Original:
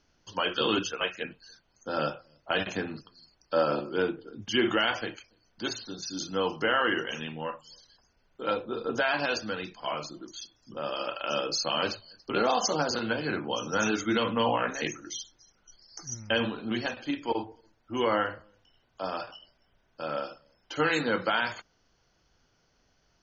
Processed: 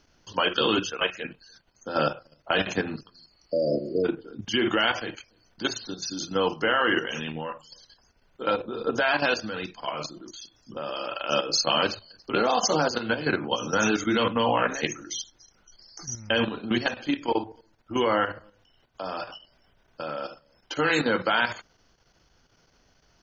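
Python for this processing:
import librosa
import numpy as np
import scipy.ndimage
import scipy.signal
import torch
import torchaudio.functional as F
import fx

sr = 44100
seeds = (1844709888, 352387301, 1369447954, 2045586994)

y = fx.level_steps(x, sr, step_db=10)
y = fx.spec_repair(y, sr, seeds[0], start_s=3.38, length_s=0.64, low_hz=690.0, high_hz=4600.0, source='before')
y = y * 10.0 ** (7.5 / 20.0)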